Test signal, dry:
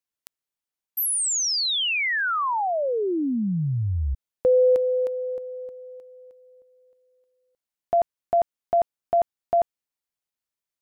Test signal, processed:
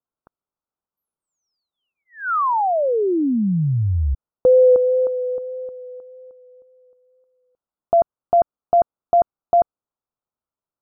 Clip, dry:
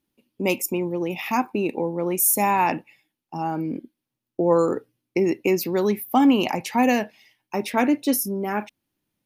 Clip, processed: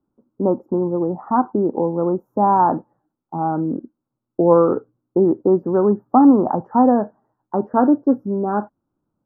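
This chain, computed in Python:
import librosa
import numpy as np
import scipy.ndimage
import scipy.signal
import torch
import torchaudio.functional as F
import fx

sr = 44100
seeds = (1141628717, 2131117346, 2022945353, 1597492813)

y = fx.wow_flutter(x, sr, seeds[0], rate_hz=2.1, depth_cents=17.0)
y = scipy.signal.sosfilt(scipy.signal.cheby2(8, 60, 2100.0, 'lowpass', fs=sr, output='sos'), y)
y = y * 10.0 ** (5.5 / 20.0)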